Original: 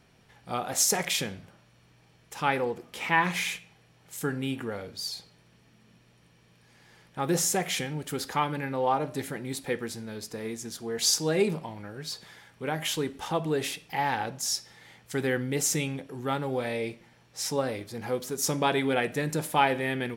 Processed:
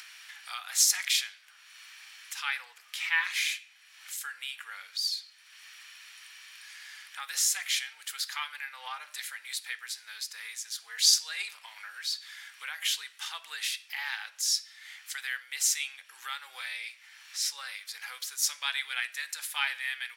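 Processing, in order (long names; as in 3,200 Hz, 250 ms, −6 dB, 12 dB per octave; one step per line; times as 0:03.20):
high-pass filter 1,500 Hz 24 dB per octave
upward compression, threshold −34 dBFS
dynamic equaliser 4,300 Hz, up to +5 dB, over −47 dBFS, Q 1.9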